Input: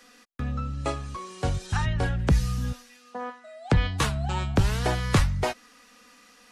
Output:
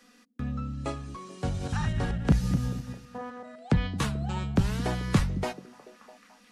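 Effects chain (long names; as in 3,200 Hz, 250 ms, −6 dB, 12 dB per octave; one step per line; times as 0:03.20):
0:01.43–0:03.56: feedback delay that plays each chunk backwards 125 ms, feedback 44%, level −5 dB
parametric band 200 Hz +9 dB 1 octave
echo through a band-pass that steps 217 ms, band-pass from 250 Hz, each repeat 0.7 octaves, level −11.5 dB
level −6 dB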